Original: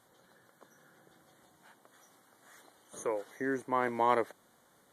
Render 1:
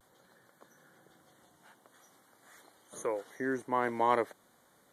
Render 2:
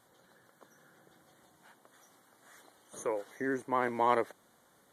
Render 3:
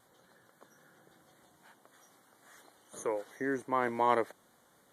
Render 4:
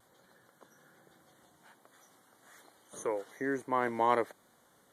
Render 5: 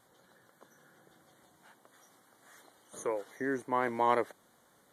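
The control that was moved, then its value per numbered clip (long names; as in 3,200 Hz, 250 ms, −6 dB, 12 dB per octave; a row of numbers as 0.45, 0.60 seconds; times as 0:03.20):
pitch vibrato, speed: 0.48, 16, 3.8, 1.2, 5.8 Hertz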